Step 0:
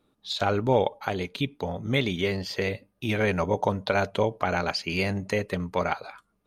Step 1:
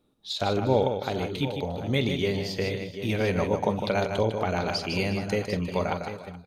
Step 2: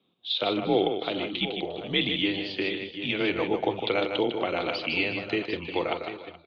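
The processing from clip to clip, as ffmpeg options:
ffmpeg -i in.wav -filter_complex "[0:a]equalizer=frequency=1500:width_type=o:width=1.5:gain=-6,asplit=2[link_01][link_02];[link_02]aecho=0:1:45|154|352|426|739|749:0.188|0.447|0.112|0.106|0.133|0.2[link_03];[link_01][link_03]amix=inputs=2:normalize=0" out.wav
ffmpeg -i in.wav -af "aexciter=amount=3.7:drive=5.1:freq=2700,highpass=frequency=290:width_type=q:width=0.5412,highpass=frequency=290:width_type=q:width=1.307,lowpass=frequency=3500:width_type=q:width=0.5176,lowpass=frequency=3500:width_type=q:width=0.7071,lowpass=frequency=3500:width_type=q:width=1.932,afreqshift=-93" out.wav

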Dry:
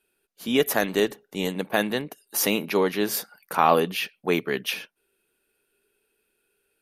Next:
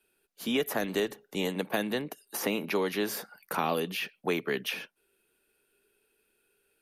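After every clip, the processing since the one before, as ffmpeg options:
ffmpeg -i in.wav -filter_complex "[0:a]acrossover=split=170|490|2300[link_01][link_02][link_03][link_04];[link_01]acompressor=threshold=-47dB:ratio=4[link_05];[link_02]acompressor=threshold=-31dB:ratio=4[link_06];[link_03]acompressor=threshold=-33dB:ratio=4[link_07];[link_04]acompressor=threshold=-37dB:ratio=4[link_08];[link_05][link_06][link_07][link_08]amix=inputs=4:normalize=0" out.wav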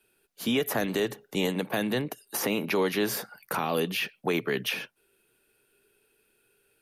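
ffmpeg -i in.wav -af "equalizer=frequency=120:width_type=o:width=0.38:gain=10,alimiter=limit=-21dB:level=0:latency=1:release=27,volume=4dB" out.wav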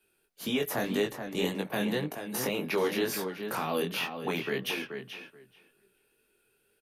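ffmpeg -i in.wav -filter_complex "[0:a]asplit=2[link_01][link_02];[link_02]adelay=430,lowpass=frequency=3200:poles=1,volume=-7.5dB,asplit=2[link_03][link_04];[link_04]adelay=430,lowpass=frequency=3200:poles=1,volume=0.16,asplit=2[link_05][link_06];[link_06]adelay=430,lowpass=frequency=3200:poles=1,volume=0.16[link_07];[link_01][link_03][link_05][link_07]amix=inputs=4:normalize=0,flanger=delay=19.5:depth=4.5:speed=1.9" out.wav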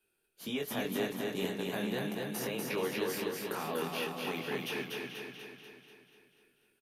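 ffmpeg -i in.wav -af "aecho=1:1:243|486|729|972|1215|1458|1701|1944:0.708|0.396|0.222|0.124|0.0696|0.039|0.0218|0.0122,volume=-6.5dB" out.wav

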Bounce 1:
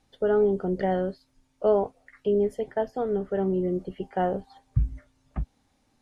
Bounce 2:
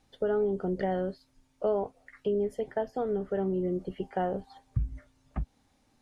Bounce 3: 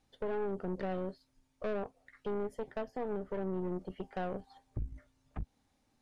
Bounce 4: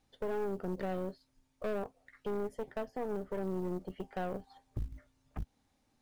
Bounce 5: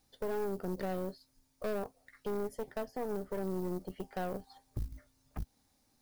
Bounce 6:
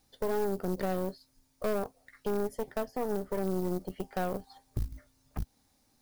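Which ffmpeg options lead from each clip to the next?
ffmpeg -i in.wav -af "acompressor=threshold=-29dB:ratio=2" out.wav
ffmpeg -i in.wav -af "aeval=exprs='(tanh(28.2*val(0)+0.7)-tanh(0.7))/28.2':channel_layout=same,volume=-2.5dB" out.wav
ffmpeg -i in.wav -af "acrusher=bits=8:mode=log:mix=0:aa=0.000001" out.wav
ffmpeg -i in.wav -af "aexciter=amount=3.2:drive=1.3:freq=4200" out.wav
ffmpeg -i in.wav -af "aeval=exprs='0.0531*(cos(1*acos(clip(val(0)/0.0531,-1,1)))-cos(1*PI/2))+0.00531*(cos(3*acos(clip(val(0)/0.0531,-1,1)))-cos(3*PI/2))':channel_layout=same,volume=6dB" out.wav

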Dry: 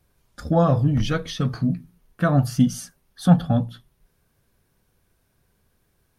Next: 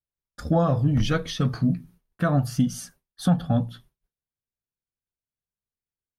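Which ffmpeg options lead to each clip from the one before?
ffmpeg -i in.wav -af "agate=range=-33dB:threshold=-44dB:ratio=3:detection=peak,alimiter=limit=-11.5dB:level=0:latency=1:release=298" out.wav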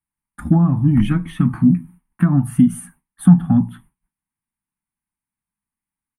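ffmpeg -i in.wav -filter_complex "[0:a]firequalizer=gain_entry='entry(130,0);entry(190,10);entry(330,3);entry(460,-21);entry(870,9);entry(1400,2);entry(2100,5);entry(5000,-27);entry(9300,9);entry(13000,-4)':delay=0.05:min_phase=1,acrossover=split=470[link_01][link_02];[link_02]acompressor=threshold=-35dB:ratio=6[link_03];[link_01][link_03]amix=inputs=2:normalize=0,volume=3.5dB" out.wav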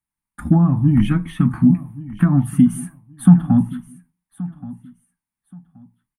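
ffmpeg -i in.wav -af "aecho=1:1:1126|2252:0.126|0.029" out.wav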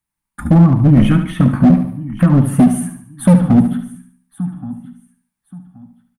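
ffmpeg -i in.wav -af "asoftclip=type=hard:threshold=-10.5dB,aecho=1:1:72|144|216|288|360:0.355|0.153|0.0656|0.0282|0.0121,volume=5.5dB" out.wav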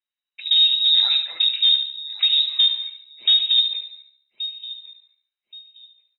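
ffmpeg -i in.wav -af "lowpass=frequency=3300:width_type=q:width=0.5098,lowpass=frequency=3300:width_type=q:width=0.6013,lowpass=frequency=3300:width_type=q:width=0.9,lowpass=frequency=3300:width_type=q:width=2.563,afreqshift=-3900,volume=-8dB" out.wav

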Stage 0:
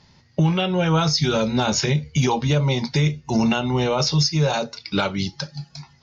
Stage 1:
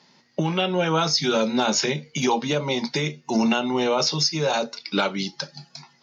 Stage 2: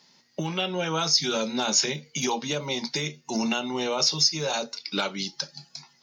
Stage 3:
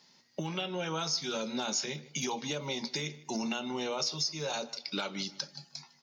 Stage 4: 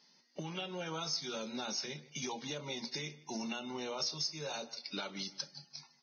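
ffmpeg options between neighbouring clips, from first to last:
ffmpeg -i in.wav -af "highpass=frequency=200:width=0.5412,highpass=frequency=200:width=1.3066" out.wav
ffmpeg -i in.wav -af "crystalizer=i=2.5:c=0,volume=-6.5dB" out.wav
ffmpeg -i in.wav -filter_complex "[0:a]acompressor=threshold=-29dB:ratio=2.5,asplit=2[link_01][link_02];[link_02]adelay=154,lowpass=frequency=2800:poles=1,volume=-18dB,asplit=2[link_03][link_04];[link_04]adelay=154,lowpass=frequency=2800:poles=1,volume=0.33,asplit=2[link_05][link_06];[link_06]adelay=154,lowpass=frequency=2800:poles=1,volume=0.33[link_07];[link_01][link_03][link_05][link_07]amix=inputs=4:normalize=0,volume=-3.5dB" out.wav
ffmpeg -i in.wav -af "acrusher=bits=5:mode=log:mix=0:aa=0.000001,volume=-6dB" -ar 16000 -c:a libvorbis -b:a 16k out.ogg

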